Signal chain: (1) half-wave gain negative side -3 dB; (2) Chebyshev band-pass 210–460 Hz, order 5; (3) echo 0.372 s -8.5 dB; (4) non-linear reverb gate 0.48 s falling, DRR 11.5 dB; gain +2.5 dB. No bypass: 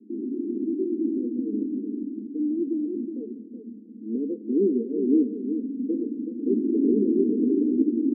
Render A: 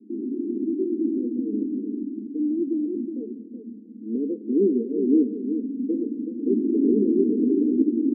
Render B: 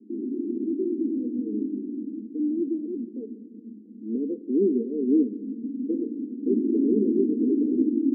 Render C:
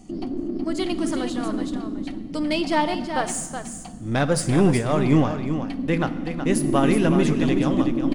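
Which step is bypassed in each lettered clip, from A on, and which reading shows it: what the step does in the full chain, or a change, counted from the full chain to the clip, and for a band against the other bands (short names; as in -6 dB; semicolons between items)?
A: 1, distortion -15 dB; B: 3, echo-to-direct -6.5 dB to -11.5 dB; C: 2, loudness change +3.0 LU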